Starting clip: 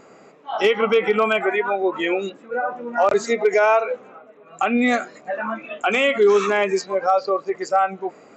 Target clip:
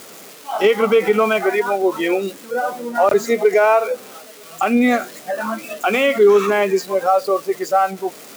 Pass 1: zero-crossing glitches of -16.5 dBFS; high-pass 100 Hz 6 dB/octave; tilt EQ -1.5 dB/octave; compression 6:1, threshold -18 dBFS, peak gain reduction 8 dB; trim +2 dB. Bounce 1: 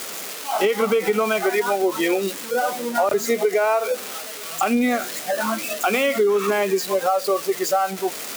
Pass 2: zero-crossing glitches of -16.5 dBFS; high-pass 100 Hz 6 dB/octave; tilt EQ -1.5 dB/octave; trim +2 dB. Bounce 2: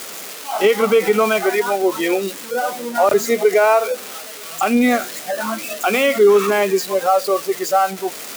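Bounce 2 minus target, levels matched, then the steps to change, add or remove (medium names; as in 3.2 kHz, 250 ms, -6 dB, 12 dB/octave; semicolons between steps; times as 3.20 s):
zero-crossing glitches: distortion +8 dB
change: zero-crossing glitches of -25 dBFS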